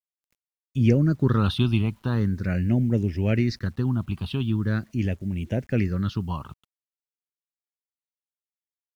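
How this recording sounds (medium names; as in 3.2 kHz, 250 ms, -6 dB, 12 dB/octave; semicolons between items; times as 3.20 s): phasing stages 6, 0.42 Hz, lowest notch 490–1200 Hz; a quantiser's noise floor 10-bit, dither none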